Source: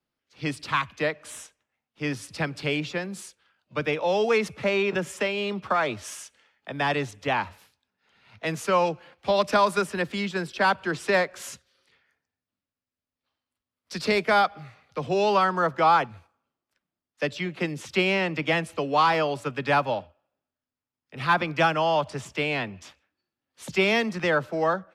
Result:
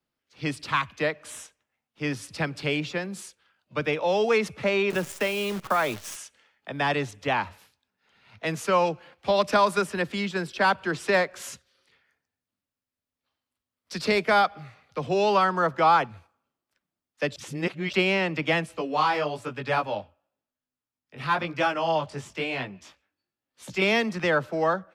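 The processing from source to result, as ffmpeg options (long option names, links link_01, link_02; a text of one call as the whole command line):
ffmpeg -i in.wav -filter_complex "[0:a]asettb=1/sr,asplit=3[link_01][link_02][link_03];[link_01]atrim=end=4.904[link_04];[link_02]atrim=start=4.9:end=6.16,asetpts=PTS-STARTPTS,afade=type=in:duration=0.004:curve=qsin,afade=type=out:start_time=1.256:duration=0.004:curve=qsin,acrusher=bits=7:dc=4:mix=0:aa=0.000001[link_05];[link_03]atrim=start=6.156[link_06];[link_04][link_05]acrossfade=duration=0.004:curve1=hsin:curve2=qsin[link_07];[link_07][link_06]acrossfade=duration=0.004:curve1=qsin:curve2=hsin,asettb=1/sr,asplit=3[link_08][link_09][link_10];[link_08]atrim=end=18.664[link_11];[link_09]atrim=start=18.66:end=23.82,asetpts=PTS-STARTPTS,afade=type=in:duration=0.004:curve=qsin,afade=type=out:start_time=5.156:duration=0.004:curve=qsin,flanger=delay=15.5:depth=5.4:speed=1[link_12];[link_10]atrim=start=23.816[link_13];[link_11][link_12]acrossfade=duration=0.004:curve1=hsin:curve2=qsin[link_14];[link_14][link_13]acrossfade=duration=0.004:curve1=qsin:curve2=hsin,asplit=3[link_15][link_16][link_17];[link_15]atrim=end=17.362[link_18];[link_16]atrim=start=17.358:end=17.932,asetpts=PTS-STARTPTS,areverse[link_19];[link_17]atrim=start=17.928[link_20];[link_18][link_19]acrossfade=duration=0.004:curve1=hsin:curve2=hsin[link_21];[link_21][link_20]acrossfade=duration=0.004:curve1=hsin:curve2=hsin" out.wav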